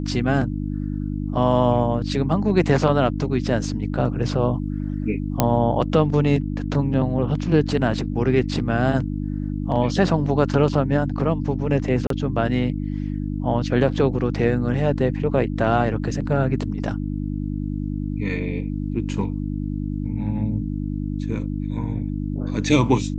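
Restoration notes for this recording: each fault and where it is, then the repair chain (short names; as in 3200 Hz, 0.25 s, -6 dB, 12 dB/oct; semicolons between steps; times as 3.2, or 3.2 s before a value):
hum 50 Hz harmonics 6 -26 dBFS
5.4 pop -2 dBFS
12.07–12.1 gap 33 ms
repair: de-click; de-hum 50 Hz, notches 6; interpolate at 12.07, 33 ms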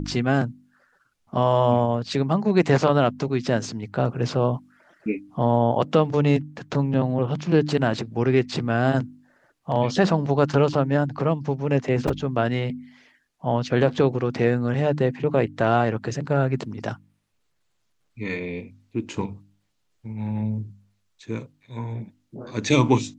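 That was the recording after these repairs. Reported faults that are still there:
none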